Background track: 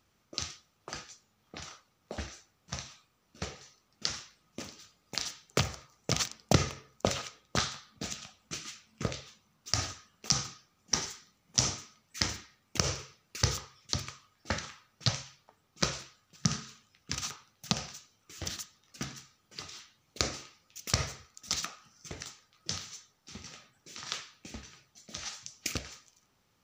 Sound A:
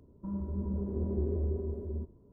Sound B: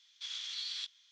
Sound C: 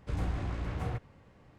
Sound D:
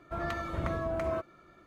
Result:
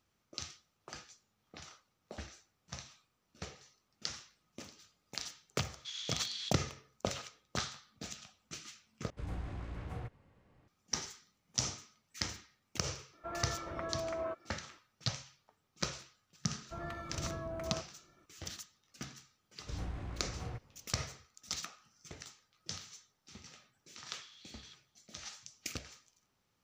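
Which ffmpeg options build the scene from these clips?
ffmpeg -i bed.wav -i cue0.wav -i cue1.wav -i cue2.wav -i cue3.wav -filter_complex "[2:a]asplit=2[link_01][link_02];[3:a]asplit=2[link_03][link_04];[4:a]asplit=2[link_05][link_06];[0:a]volume=-7dB[link_07];[link_01]equalizer=frequency=6600:width=6.3:gain=6.5[link_08];[link_05]bass=frequency=250:gain=-10,treble=frequency=4000:gain=-11[link_09];[link_06]equalizer=frequency=140:width=1.5:gain=4.5[link_10];[link_07]asplit=2[link_11][link_12];[link_11]atrim=end=9.104[link_13];[link_03]atrim=end=1.58,asetpts=PTS-STARTPTS,volume=-8dB[link_14];[link_12]atrim=start=10.676[link_15];[link_08]atrim=end=1.11,asetpts=PTS-STARTPTS,volume=-2dB,afade=type=in:duration=0.004:curve=hsin,afade=type=out:start_time=1.106:duration=0.004:curve=hsin,adelay=5640[link_16];[link_09]atrim=end=1.66,asetpts=PTS-STARTPTS,volume=-5dB,afade=type=in:duration=0.004:curve=hsin,afade=type=out:start_time=1.656:duration=0.004:curve=hsin,adelay=13130[link_17];[link_10]atrim=end=1.66,asetpts=PTS-STARTPTS,volume=-9dB,afade=type=in:duration=0.004:curve=hsin,afade=type=out:start_time=1.656:duration=0.004:curve=hsin,adelay=16600[link_18];[link_04]atrim=end=1.58,asetpts=PTS-STARTPTS,volume=-8dB,afade=type=in:duration=0.004:curve=hsin,afade=type=out:start_time=1.576:duration=0.004:curve=hsin,adelay=19600[link_19];[link_02]atrim=end=1.11,asetpts=PTS-STARTPTS,volume=-17.5dB,afade=type=in:duration=0.004:curve=hsin,afade=type=out:start_time=1.106:duration=0.004:curve=hsin,adelay=23880[link_20];[link_13][link_14]acrossfade=duration=0.004:curve1=hsin:curve2=hsin[link_21];[link_21][link_15]acrossfade=duration=0.004:curve1=hsin:curve2=hsin[link_22];[link_22][link_16][link_17][link_18][link_19][link_20]amix=inputs=6:normalize=0" out.wav

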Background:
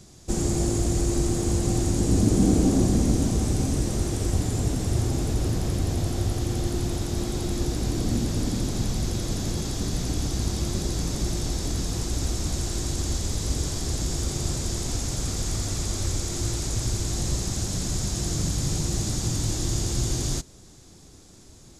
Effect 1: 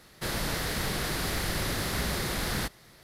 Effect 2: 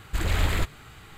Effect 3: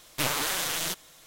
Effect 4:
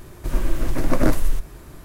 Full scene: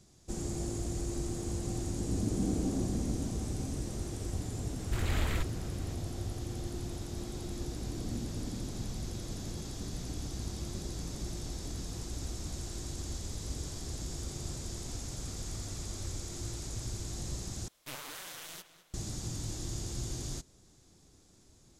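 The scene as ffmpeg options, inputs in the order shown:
ffmpeg -i bed.wav -i cue0.wav -i cue1.wav -i cue2.wav -filter_complex "[0:a]volume=-12dB[link_01];[3:a]asplit=2[link_02][link_03];[link_03]adelay=206,lowpass=frequency=4800:poles=1,volume=-13dB,asplit=2[link_04][link_05];[link_05]adelay=206,lowpass=frequency=4800:poles=1,volume=0.42,asplit=2[link_06][link_07];[link_07]adelay=206,lowpass=frequency=4800:poles=1,volume=0.42,asplit=2[link_08][link_09];[link_09]adelay=206,lowpass=frequency=4800:poles=1,volume=0.42[link_10];[link_02][link_04][link_06][link_08][link_10]amix=inputs=5:normalize=0[link_11];[link_01]asplit=2[link_12][link_13];[link_12]atrim=end=17.684[link_14];[link_11]atrim=end=1.26,asetpts=PTS-STARTPTS,volume=-16dB[link_15];[link_13]atrim=start=18.936[link_16];[2:a]atrim=end=1.17,asetpts=PTS-STARTPTS,volume=-8.5dB,afade=type=in:duration=0.004:curve=hsin,afade=type=out:start_time=1.166:duration=0.004:curve=hsin,adelay=4780[link_17];[link_14][link_15]acrossfade=duration=0.004:curve1=hsin:curve2=hsin[link_18];[link_18][link_16]acrossfade=duration=0.004:curve1=hsin:curve2=hsin[link_19];[link_19][link_17]amix=inputs=2:normalize=0" out.wav

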